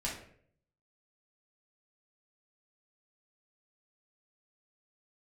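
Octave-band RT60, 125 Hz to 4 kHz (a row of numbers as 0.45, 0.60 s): 0.90, 0.65, 0.70, 0.50, 0.55, 0.40 s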